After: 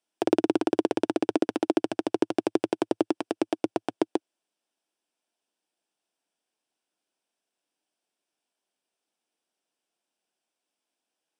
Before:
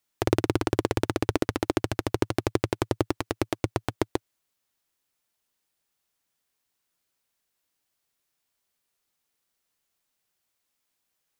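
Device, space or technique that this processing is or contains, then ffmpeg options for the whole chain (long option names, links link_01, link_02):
television speaker: -af "highpass=frequency=200:width=0.5412,highpass=frequency=200:width=1.3066,equalizer=frequency=320:width_type=q:width=4:gain=4,equalizer=frequency=690:width_type=q:width=4:gain=4,equalizer=frequency=1200:width_type=q:width=4:gain=-7,equalizer=frequency=2000:width_type=q:width=4:gain=-9,equalizer=frequency=4200:width_type=q:width=4:gain=-8,equalizer=frequency=6800:width_type=q:width=4:gain=-10,lowpass=frequency=8700:width=0.5412,lowpass=frequency=8700:width=1.3066"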